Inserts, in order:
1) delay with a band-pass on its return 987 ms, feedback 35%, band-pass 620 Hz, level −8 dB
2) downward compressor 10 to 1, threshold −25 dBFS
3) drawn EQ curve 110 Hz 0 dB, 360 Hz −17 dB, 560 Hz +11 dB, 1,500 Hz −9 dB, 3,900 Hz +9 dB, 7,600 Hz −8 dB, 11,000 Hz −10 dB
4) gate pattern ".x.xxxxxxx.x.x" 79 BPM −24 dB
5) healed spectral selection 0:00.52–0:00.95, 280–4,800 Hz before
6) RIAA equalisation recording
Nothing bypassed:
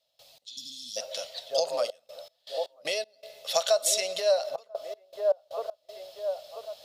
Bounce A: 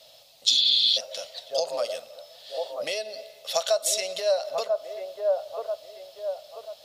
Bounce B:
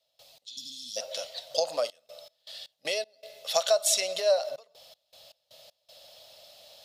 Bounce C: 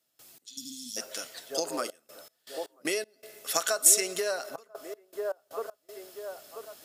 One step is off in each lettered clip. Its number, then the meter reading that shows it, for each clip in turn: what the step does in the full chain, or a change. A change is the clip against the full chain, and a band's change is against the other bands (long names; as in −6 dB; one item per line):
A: 4, 4 kHz band +9.0 dB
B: 1, change in momentary loudness spread +2 LU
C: 3, change in crest factor +3.5 dB